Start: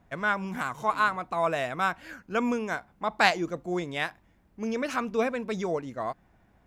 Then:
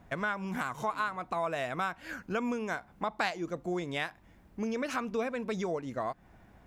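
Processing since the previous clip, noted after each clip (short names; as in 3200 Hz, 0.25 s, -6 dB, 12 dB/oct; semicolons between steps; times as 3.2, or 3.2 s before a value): compressor 3:1, threshold -38 dBFS, peak gain reduction 16.5 dB; gain +5 dB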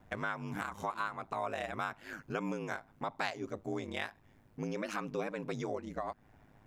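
ring modulator 52 Hz; gain -1.5 dB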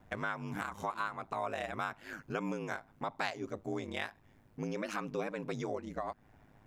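nothing audible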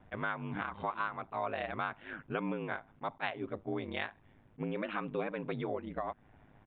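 downsampling 8000 Hz; attack slew limiter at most 550 dB/s; gain +1 dB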